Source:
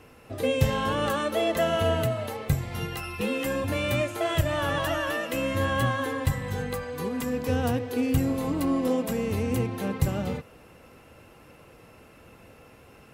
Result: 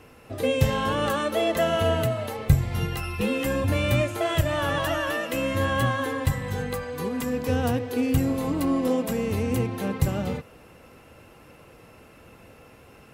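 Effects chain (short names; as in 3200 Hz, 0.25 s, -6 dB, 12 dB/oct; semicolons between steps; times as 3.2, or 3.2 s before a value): 2.38–4.22 low shelf 120 Hz +9.5 dB; gain +1.5 dB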